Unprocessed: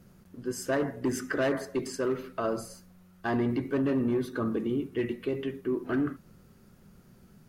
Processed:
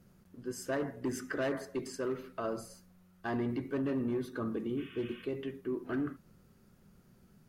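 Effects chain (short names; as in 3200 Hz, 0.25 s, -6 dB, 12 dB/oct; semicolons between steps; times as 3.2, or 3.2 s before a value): spectral repair 4.8–5.19, 1000–3700 Hz after; gain -6 dB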